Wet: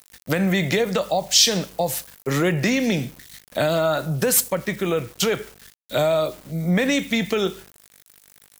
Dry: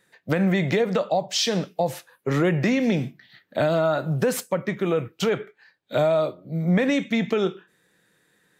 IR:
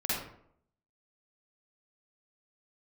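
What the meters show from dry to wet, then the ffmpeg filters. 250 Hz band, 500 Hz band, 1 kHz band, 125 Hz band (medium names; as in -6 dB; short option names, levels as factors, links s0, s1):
0.0 dB, +0.5 dB, +1.0 dB, 0.0 dB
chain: -filter_complex "[0:a]aeval=exprs='val(0)+0.00282*(sin(2*PI*50*n/s)+sin(2*PI*2*50*n/s)/2+sin(2*PI*3*50*n/s)/3+sin(2*PI*4*50*n/s)/4+sin(2*PI*5*50*n/s)/5)':c=same,asplit=2[s0][s1];[1:a]atrim=start_sample=2205,adelay=11[s2];[s1][s2]afir=irnorm=-1:irlink=0,volume=0.0316[s3];[s0][s3]amix=inputs=2:normalize=0,aeval=exprs='val(0)*gte(abs(val(0)),0.00501)':c=same,crystalizer=i=3.5:c=0"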